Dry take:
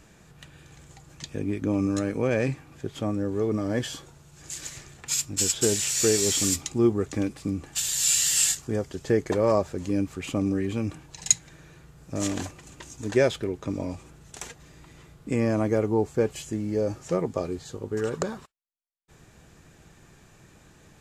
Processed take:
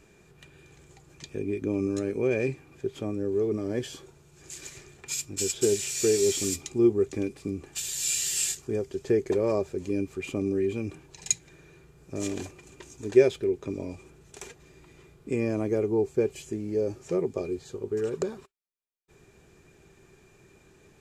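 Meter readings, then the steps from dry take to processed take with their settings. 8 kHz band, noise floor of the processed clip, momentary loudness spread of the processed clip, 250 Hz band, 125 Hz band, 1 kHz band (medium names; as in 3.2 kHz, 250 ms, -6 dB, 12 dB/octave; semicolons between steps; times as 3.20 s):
-5.5 dB, -59 dBFS, 17 LU, -2.5 dB, -5.5 dB, -8.0 dB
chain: dynamic bell 1.2 kHz, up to -4 dB, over -41 dBFS, Q 0.91; small resonant body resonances 390/2400 Hz, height 13 dB, ringing for 55 ms; trim -5.5 dB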